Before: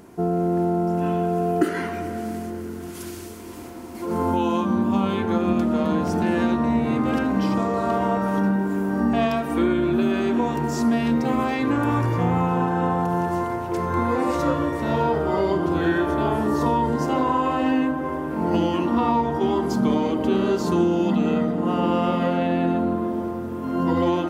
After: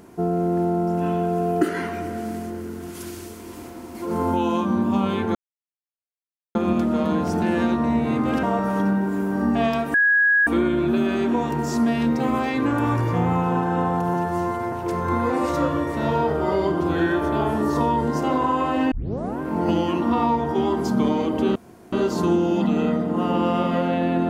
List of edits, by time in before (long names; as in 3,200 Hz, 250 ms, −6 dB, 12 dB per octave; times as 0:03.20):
0:05.35: splice in silence 1.20 s
0:07.23–0:08.01: remove
0:09.52: insert tone 1,660 Hz −14 dBFS 0.53 s
0:13.19–0:13.58: time-stretch 1.5×
0:17.77: tape start 0.49 s
0:20.41: splice in room tone 0.37 s